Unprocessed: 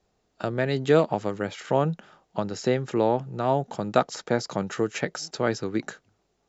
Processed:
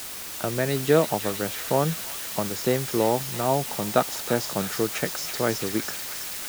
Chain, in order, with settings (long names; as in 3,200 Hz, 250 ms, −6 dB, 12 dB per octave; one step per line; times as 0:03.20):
bit-depth reduction 6 bits, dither triangular
delay with a high-pass on its return 326 ms, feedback 76%, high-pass 2,100 Hz, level −5.5 dB